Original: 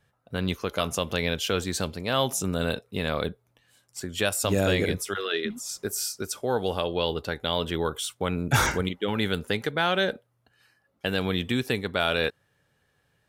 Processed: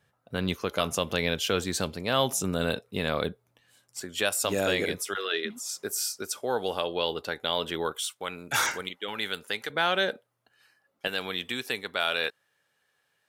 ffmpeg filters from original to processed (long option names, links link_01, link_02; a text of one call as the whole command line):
ffmpeg -i in.wav -af "asetnsamples=nb_out_samples=441:pad=0,asendcmd='4.03 highpass f 410;7.92 highpass f 1200;9.7 highpass f 410;11.08 highpass f 940',highpass=frequency=110:poles=1" out.wav